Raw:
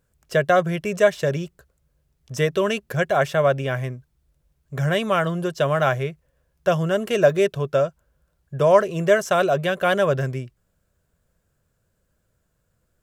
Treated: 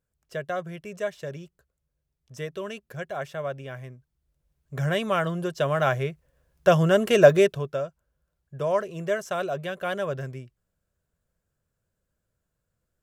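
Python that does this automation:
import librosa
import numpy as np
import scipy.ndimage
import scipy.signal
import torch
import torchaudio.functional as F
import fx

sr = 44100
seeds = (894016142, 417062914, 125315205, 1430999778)

y = fx.gain(x, sr, db=fx.line((3.85, -13.0), (4.78, -4.0), (5.7, -4.0), (6.77, 2.0), (7.36, 2.0), (7.78, -9.5)))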